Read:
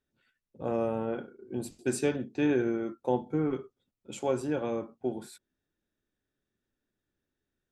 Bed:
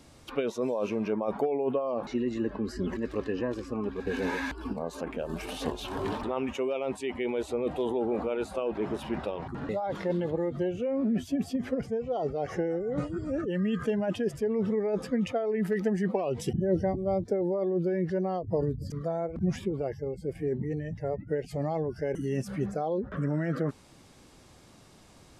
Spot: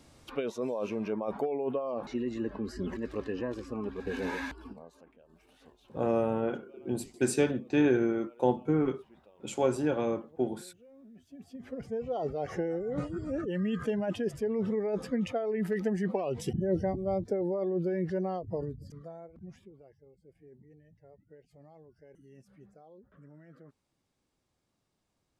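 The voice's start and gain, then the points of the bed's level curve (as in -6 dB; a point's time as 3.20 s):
5.35 s, +2.0 dB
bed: 4.44 s -3.5 dB
5.17 s -26.5 dB
11.14 s -26.5 dB
11.99 s -2.5 dB
18.29 s -2.5 dB
19.89 s -25 dB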